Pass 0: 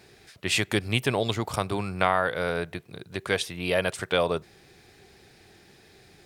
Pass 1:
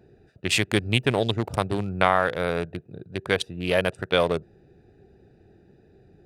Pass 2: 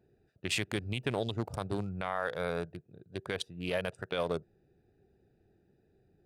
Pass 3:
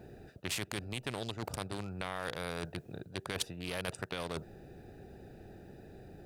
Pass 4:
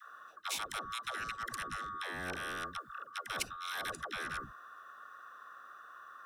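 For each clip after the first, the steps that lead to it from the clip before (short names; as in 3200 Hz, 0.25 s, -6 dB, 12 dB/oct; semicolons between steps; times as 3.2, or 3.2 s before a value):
Wiener smoothing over 41 samples; gain +3.5 dB
spectral noise reduction 6 dB; limiter -12.5 dBFS, peak gain reduction 11 dB; gain -7.5 dB
low shelf 460 Hz +9.5 dB; reverse; compressor, threshold -35 dBFS, peak gain reduction 13.5 dB; reverse; spectral compressor 2:1; gain +6.5 dB
band-swap scrambler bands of 1000 Hz; dispersion lows, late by 0.143 s, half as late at 370 Hz; gain -1 dB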